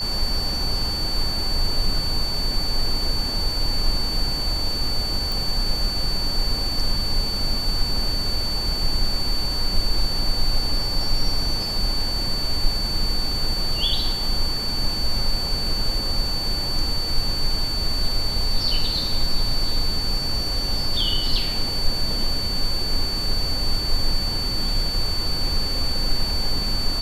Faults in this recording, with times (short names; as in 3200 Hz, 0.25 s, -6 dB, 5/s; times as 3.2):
tone 4500 Hz -25 dBFS
5.32 pop